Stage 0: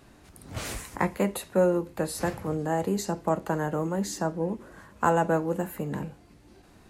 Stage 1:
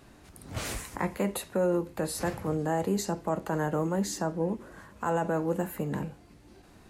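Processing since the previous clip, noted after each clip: peak limiter -18.5 dBFS, peak gain reduction 9.5 dB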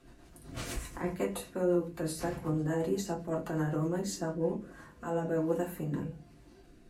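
rotary cabinet horn 8 Hz, later 1.2 Hz, at 3.92 s; reverberation, pre-delay 3 ms, DRR -2 dB; trim -6 dB

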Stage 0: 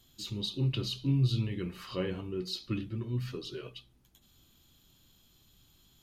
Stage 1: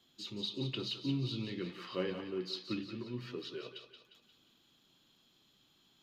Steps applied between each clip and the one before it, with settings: three-band isolator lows -21 dB, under 170 Hz, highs -15 dB, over 5.4 kHz; thinning echo 177 ms, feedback 53%, high-pass 570 Hz, level -8 dB; trim -1.5 dB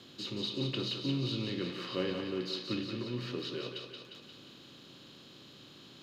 spectral levelling over time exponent 0.6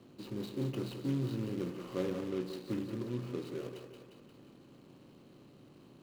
median filter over 25 samples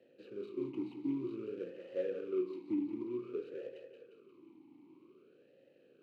talking filter e-u 0.53 Hz; trim +6 dB

